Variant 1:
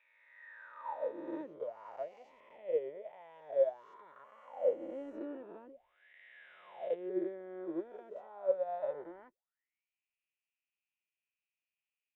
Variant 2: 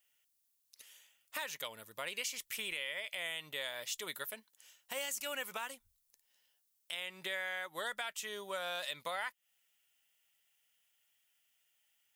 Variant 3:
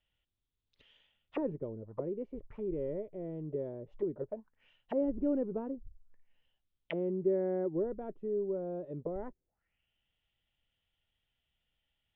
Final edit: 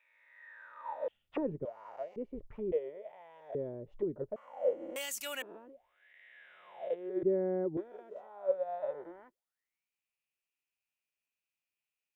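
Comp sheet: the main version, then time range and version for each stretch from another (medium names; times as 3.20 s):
1
1.08–1.65 s: from 3
2.16–2.72 s: from 3
3.55–4.36 s: from 3
4.96–5.42 s: from 2
7.23–7.77 s: from 3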